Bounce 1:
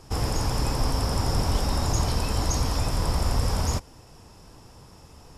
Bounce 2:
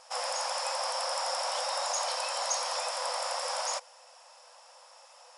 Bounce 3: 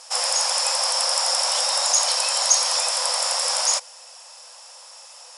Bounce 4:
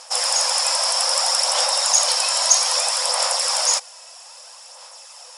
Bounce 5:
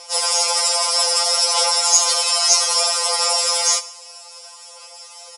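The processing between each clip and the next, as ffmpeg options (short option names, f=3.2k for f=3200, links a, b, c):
-af "afftfilt=real='re*between(b*sr/4096,490,11000)':imag='im*between(b*sr/4096,490,11000)':win_size=4096:overlap=0.75"
-af "equalizer=f=9.7k:t=o:w=3:g=13,volume=3dB"
-af "aphaser=in_gain=1:out_gain=1:delay=3.1:decay=0.33:speed=0.62:type=sinusoidal,volume=1.5dB"
-af "asuperstop=centerf=1700:order=4:qfactor=7.1,aecho=1:1:72|144|216|288:0.106|0.054|0.0276|0.0141,afftfilt=real='re*2.83*eq(mod(b,8),0)':imag='im*2.83*eq(mod(b,8),0)':win_size=2048:overlap=0.75,volume=4dB"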